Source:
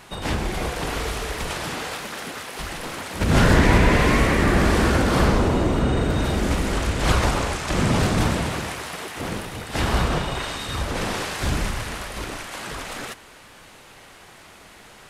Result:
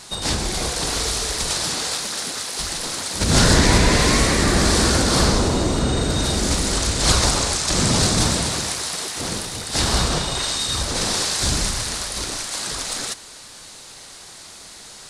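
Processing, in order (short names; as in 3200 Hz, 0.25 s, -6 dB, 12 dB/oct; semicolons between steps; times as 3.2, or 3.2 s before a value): band shelf 6200 Hz +13.5 dB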